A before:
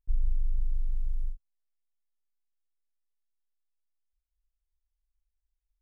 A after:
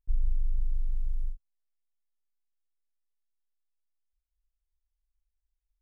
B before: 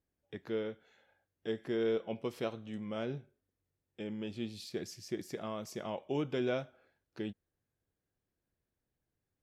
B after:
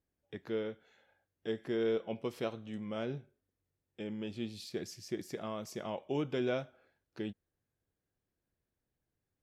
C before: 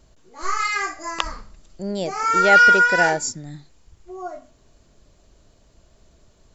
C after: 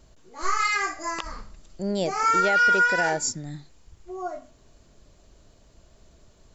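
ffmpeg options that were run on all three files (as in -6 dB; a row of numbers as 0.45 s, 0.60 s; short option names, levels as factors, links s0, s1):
-af "alimiter=limit=0.224:level=0:latency=1:release=201"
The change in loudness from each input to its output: 0.0 LU, 0.0 LU, -5.5 LU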